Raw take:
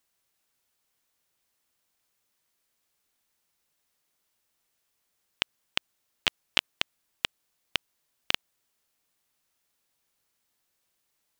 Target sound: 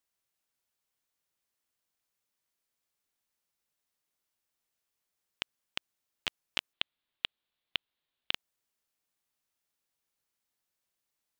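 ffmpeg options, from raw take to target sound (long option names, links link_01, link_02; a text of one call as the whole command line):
ffmpeg -i in.wav -filter_complex "[0:a]asettb=1/sr,asplit=3[link_01][link_02][link_03];[link_01]atrim=end=6.734[link_04];[link_02]atrim=start=6.73:end=8.33,asetpts=PTS-STARTPTS,afade=type=in:duration=0.004:curve=qsin,afade=type=out:start_time=1.596:duration=0.004:curve=qsin,highshelf=frequency=4700:width_type=q:width=3:gain=-9[link_05];[link_03]atrim=start=8.326[link_06];[link_04][link_05]acrossfade=duration=0.004:curve1=hsin:curve2=qsin[link_07];[link_07][link_06]acrossfade=duration=0.004:curve1=qsin:curve2=hsin,volume=-8.5dB" out.wav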